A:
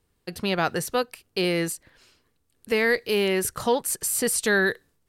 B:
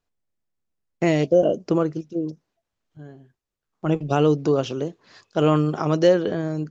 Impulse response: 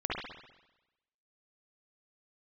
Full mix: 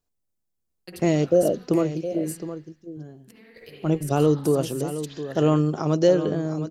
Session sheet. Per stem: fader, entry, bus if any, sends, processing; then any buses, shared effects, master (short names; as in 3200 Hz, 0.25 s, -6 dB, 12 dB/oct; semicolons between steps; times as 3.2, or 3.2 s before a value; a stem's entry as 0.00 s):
-16.5 dB, 0.60 s, send -3.5 dB, no echo send, gate -52 dBFS, range -20 dB; negative-ratio compressor -30 dBFS, ratio -0.5; auto duck -9 dB, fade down 1.70 s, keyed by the second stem
0.0 dB, 0.00 s, no send, echo send -11.5 dB, bell 2200 Hz -7.5 dB 2.7 oct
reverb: on, RT60 1.0 s, pre-delay 49 ms
echo: echo 0.714 s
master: high shelf 4100 Hz +6.5 dB